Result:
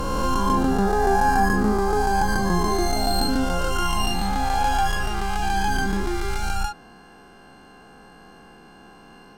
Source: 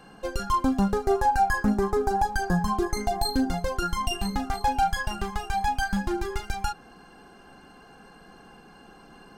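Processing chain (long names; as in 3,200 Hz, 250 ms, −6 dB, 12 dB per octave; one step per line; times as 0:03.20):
peak hold with a rise ahead of every peak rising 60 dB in 2.88 s
level −1 dB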